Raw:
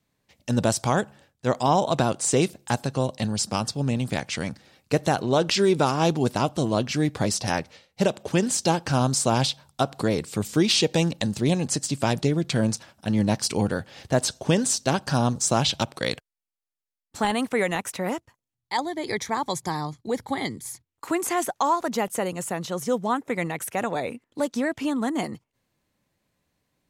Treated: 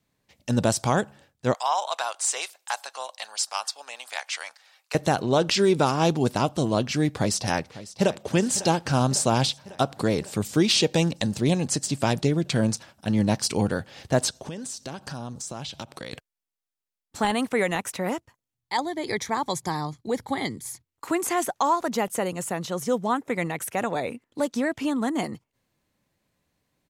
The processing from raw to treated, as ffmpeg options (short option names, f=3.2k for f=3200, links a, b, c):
-filter_complex "[0:a]asettb=1/sr,asplit=3[a][b][c];[a]atrim=end=1.544[d];[b]atrim=start=1.54:end=4.95,asetpts=PTS-STARTPTS,afade=t=in:d=0.004:c=qsin,afade=t=out:st=3.406:d=0.004:c=qsin,highpass=f=780:w=0.5412,highpass=f=780:w=1.3066[e];[c]atrim=start=4.946[f];[d][e]acrossfade=d=0.004:c1=hsin:c2=qsin[g];[g][f]acrossfade=d=0.004:c1=qsin:c2=hsin,asplit=2[h][i];[i]afade=t=in:st=7.14:d=0.01,afade=t=out:st=8.23:d=0.01,aecho=0:1:550|1100|1650|2200|2750|3300|3850|4400:0.149624|0.104736|0.0733155|0.0513209|0.0359246|0.0251472|0.0176031|0.0123221[j];[h][j]amix=inputs=2:normalize=0,asplit=3[k][l][m];[k]afade=t=out:st=14.29:d=0.02[n];[l]acompressor=threshold=-34dB:ratio=4:attack=3.2:release=140:knee=1:detection=peak,afade=t=in:st=14.29:d=0.02,afade=t=out:st=16.12:d=0.02[o];[m]afade=t=in:st=16.12:d=0.02[p];[n][o][p]amix=inputs=3:normalize=0"